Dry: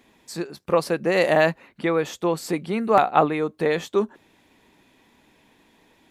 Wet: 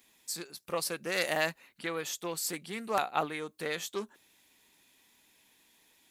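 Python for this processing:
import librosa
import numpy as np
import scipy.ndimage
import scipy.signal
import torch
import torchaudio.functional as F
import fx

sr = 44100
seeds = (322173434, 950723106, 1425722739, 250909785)

y = F.preemphasis(torch.from_numpy(x), 0.9).numpy()
y = fx.doppler_dist(y, sr, depth_ms=0.12)
y = y * librosa.db_to_amplitude(3.5)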